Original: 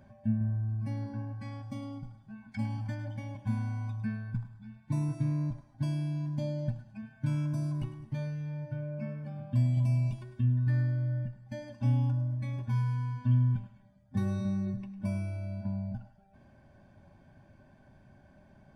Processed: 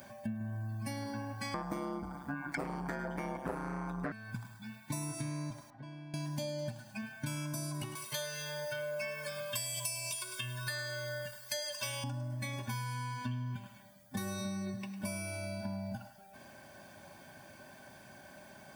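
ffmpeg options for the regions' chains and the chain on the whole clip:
-filter_complex "[0:a]asettb=1/sr,asplit=3[a][b][c];[a]atrim=end=1.544[d];[b]atrim=start=1.54:end=4.12,asetpts=PTS-STARTPTS,afade=t=in:d=0.004:c=qsin,afade=t=out:st=2.576:d=0.004:c=qsin,aeval=exprs='0.1*sin(PI/2*3.16*val(0)/0.1)':c=same,aeval=exprs='val(0)*sin(2*PI*68*n/s)':c=same,highshelf=f=2.1k:t=q:w=1.5:g=-12.5[e];[c]atrim=start=4.116[f];[d][e]acrossfade=d=0.004:c1=hsin:c2=qsin[g];[g][f]acrossfade=d=0.004:c1=qsin:c2=hsin,asettb=1/sr,asplit=3[h][i][j];[h]atrim=end=5.704[k];[i]atrim=start=5.7:end=6.14,asetpts=PTS-STARTPTS,afade=t=in:d=0.004:c=qsin,afade=t=out:st=0.436:d=0.004:c=qsin,lowpass=1.8k,acompressor=threshold=-49dB:ratio=3:attack=3.2:release=140:knee=1:detection=peak,asplit=2[l][m];[m]adelay=16,volume=-12.5dB[n];[l][n]amix=inputs=2:normalize=0,atrim=end_sample=19404[o];[j]atrim=start=6.136[p];[k][o]acrossfade=d=0.004:c1=hsin:c2=qsin[q];[q][p]acrossfade=d=0.004:c1=qsin:c2=hsin,asettb=1/sr,asplit=3[r][s][t];[r]atrim=end=7.954[u];[s]atrim=start=7.95:end=12.04,asetpts=PTS-STARTPTS,afade=t=in:d=0.004:c=qsin,afade=t=out:st=4.086:d=0.004:c=qsin,highpass=f=570:p=1,highshelf=f=2.4k:g=10.5,aecho=1:1:1.9:0.99,atrim=end_sample=180369[v];[t]atrim=start=12.036[w];[u][v]acrossfade=d=0.004:c1=hsin:c2=qsin[x];[x][w]acrossfade=d=0.004:c1=qsin:c2=hsin,highpass=f=610:p=1,aemphasis=mode=production:type=75fm,acompressor=threshold=-47dB:ratio=6,volume=11.5dB"

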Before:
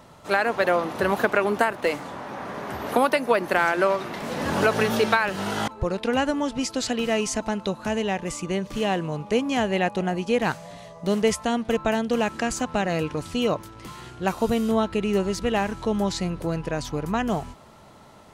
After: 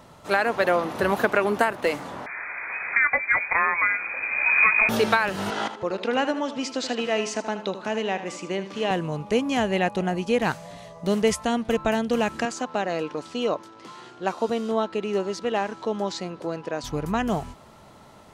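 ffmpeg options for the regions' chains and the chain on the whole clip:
-filter_complex "[0:a]asettb=1/sr,asplit=3[a][b][c];[a]atrim=end=2.264[d];[b]atrim=start=2.26:end=4.89,asetpts=PTS-STARTPTS,afade=t=in:d=0.004:c=qsin,afade=t=out:st=2.626:d=0.004:c=qsin,asubboost=boost=11:cutoff=150,asplit=2[e][f];[f]adelay=20,volume=-13dB[g];[e][g]amix=inputs=2:normalize=0,atrim=end_sample=115983,lowpass=f=2.2k:t=q:w=0.5098,lowpass=f=2.2k:t=q:w=0.6013,lowpass=f=2.2k:t=q:w=0.9,lowpass=f=2.2k:t=q:w=2.563,afreqshift=-2600[h];[c]atrim=start=4.886[i];[d][h]acrossfade=d=0.004:c1=hsin:c2=qsin[j];[j][i]acrossfade=d=0.004:c1=qsin:c2=hsin,asettb=1/sr,asplit=3[k][l][m];[k]atrim=end=5.504[n];[l]atrim=start=5.5:end=8.91,asetpts=PTS-STARTPTS,afade=t=in:d=0.004:c=qsin,afade=t=out:st=3.406:d=0.004:c=qsin,highpass=270,lowpass=5.5k,aecho=1:1:78|156|234:0.266|0.0772|0.0224,atrim=end_sample=150381[o];[m]atrim=start=8.906[p];[n][o]acrossfade=d=0.004:c1=hsin:c2=qsin[q];[q][p]acrossfade=d=0.004:c1=qsin:c2=hsin,asettb=1/sr,asplit=3[r][s][t];[r]atrim=end=12.454[u];[s]atrim=start=12.45:end=16.84,asetpts=PTS-STARTPTS,afade=t=in:d=0.004:c=qsin,afade=t=out:st=4.386:d=0.004:c=qsin,highpass=290,lowpass=5.8k,equalizer=f=2.3k:w=1.3:g=-4[v];[t]atrim=start=16.836[w];[u][v]acrossfade=d=0.004:c1=hsin:c2=qsin[x];[x][w]acrossfade=d=0.004:c1=qsin:c2=hsin"

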